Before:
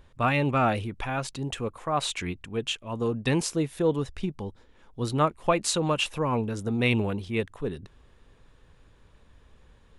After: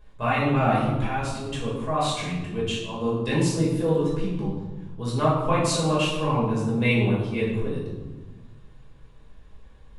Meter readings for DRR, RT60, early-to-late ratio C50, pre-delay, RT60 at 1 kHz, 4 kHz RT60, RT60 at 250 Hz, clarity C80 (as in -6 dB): -7.5 dB, 1.2 s, 2.0 dB, 5 ms, 1.1 s, 0.75 s, 1.8 s, 4.5 dB